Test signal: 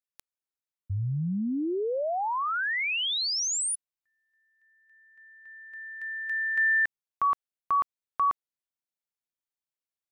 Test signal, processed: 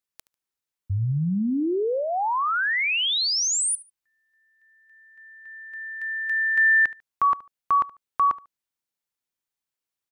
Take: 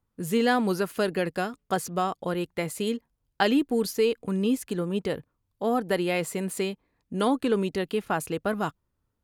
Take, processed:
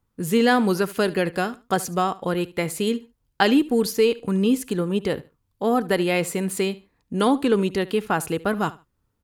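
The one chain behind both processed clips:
parametric band 630 Hz −3.5 dB 0.29 octaves
on a send: repeating echo 73 ms, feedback 22%, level −19.5 dB
on the sum: level +5 dB

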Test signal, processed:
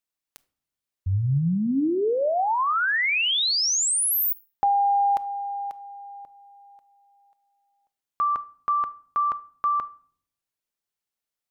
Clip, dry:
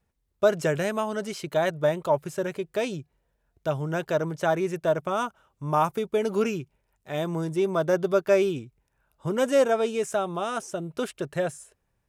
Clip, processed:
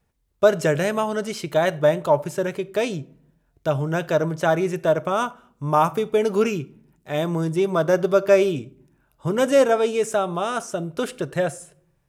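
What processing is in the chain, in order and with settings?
rectangular room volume 780 cubic metres, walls furnished, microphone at 0.39 metres
level +4.5 dB

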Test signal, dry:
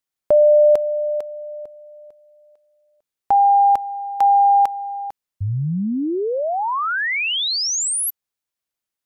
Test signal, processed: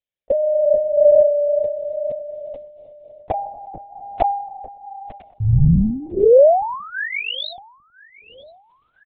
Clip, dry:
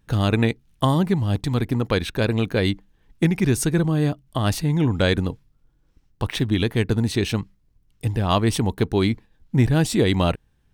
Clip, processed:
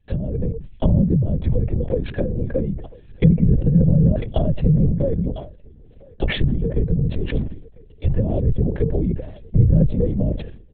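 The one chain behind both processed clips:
treble cut that deepens with the level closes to 340 Hz, closed at −16.5 dBFS
low-shelf EQ 160 Hz +5 dB
comb filter 1.8 ms, depth 94%
automatic gain control gain up to 16.5 dB
phaser with its sweep stopped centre 310 Hz, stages 6
feedback echo with a high-pass in the loop 1,007 ms, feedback 49%, high-pass 580 Hz, level −22 dB
linear-prediction vocoder at 8 kHz whisper
level that may fall only so fast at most 76 dB per second
level −3.5 dB

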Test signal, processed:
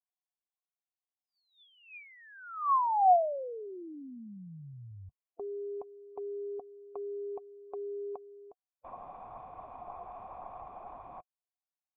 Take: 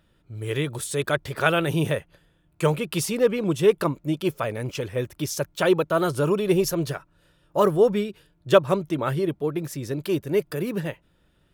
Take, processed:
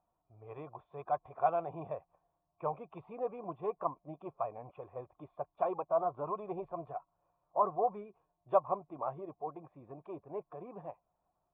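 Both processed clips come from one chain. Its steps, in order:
spectral magnitudes quantised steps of 15 dB
formant resonators in series a
level +4 dB

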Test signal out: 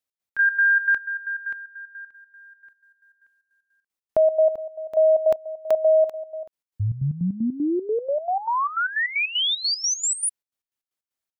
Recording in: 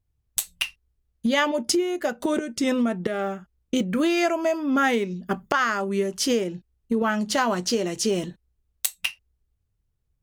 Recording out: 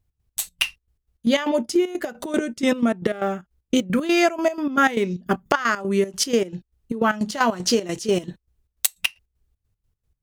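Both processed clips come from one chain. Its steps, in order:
gate pattern "x.x.x.xx." 154 BPM −12 dB
level +4.5 dB

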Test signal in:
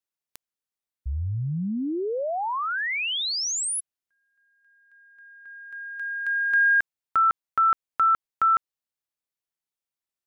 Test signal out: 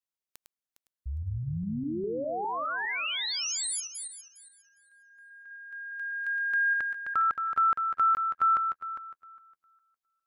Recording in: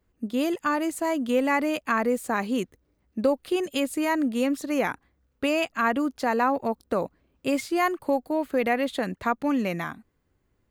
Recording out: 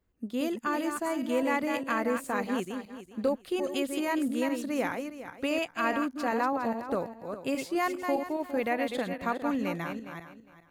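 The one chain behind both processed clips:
feedback delay that plays each chunk backwards 204 ms, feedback 44%, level −6 dB
level −5.5 dB

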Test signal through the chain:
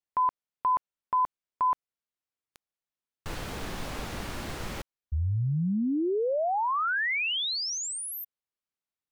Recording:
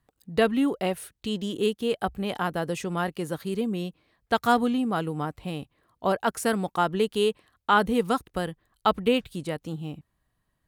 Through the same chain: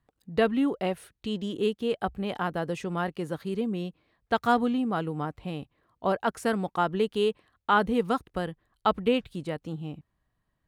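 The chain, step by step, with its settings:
low-pass filter 3,500 Hz 6 dB per octave
level −1.5 dB

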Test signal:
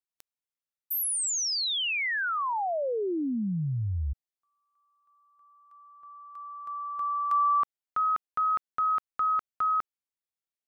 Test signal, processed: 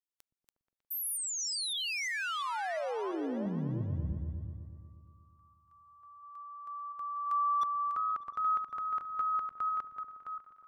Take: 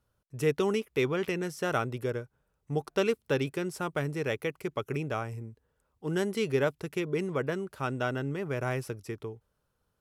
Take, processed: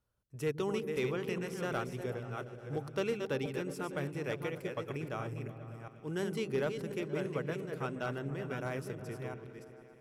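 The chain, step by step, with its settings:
delay that plays each chunk backwards 346 ms, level −6 dB
gain into a clipping stage and back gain 19 dB
echo whose low-pass opens from repeat to repeat 120 ms, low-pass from 200 Hz, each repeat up 1 octave, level −6 dB
level −7 dB

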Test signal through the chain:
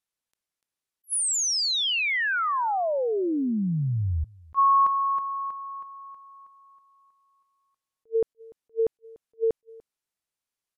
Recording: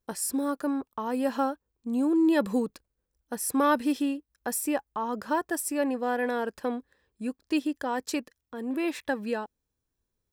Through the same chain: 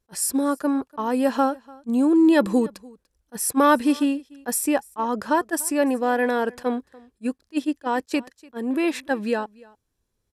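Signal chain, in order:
linear-phase brick-wall low-pass 13,000 Hz
on a send: single-tap delay 293 ms −24 dB
on the sum: level that may rise only so fast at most 590 dB per second
level +6.5 dB

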